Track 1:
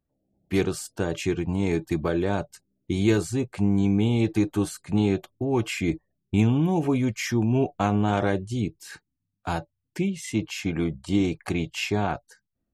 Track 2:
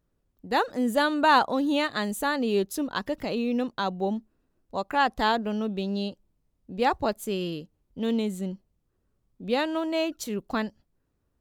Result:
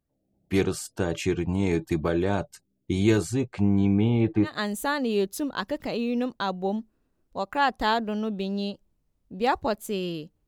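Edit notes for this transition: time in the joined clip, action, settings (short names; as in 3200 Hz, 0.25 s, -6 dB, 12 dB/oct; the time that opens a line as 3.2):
track 1
3.34–4.56 LPF 7500 Hz -> 1400 Hz
4.49 switch to track 2 from 1.87 s, crossfade 0.14 s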